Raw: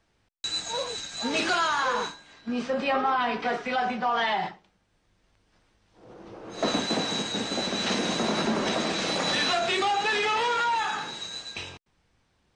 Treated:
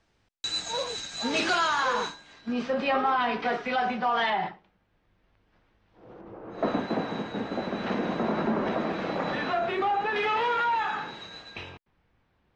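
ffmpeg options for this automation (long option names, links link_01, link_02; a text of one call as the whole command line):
ffmpeg -i in.wav -af "asetnsamples=nb_out_samples=441:pad=0,asendcmd='2.53 lowpass f 4900;4.3 lowpass f 2800;6.21 lowpass f 1600;10.16 lowpass f 2600',lowpass=7900" out.wav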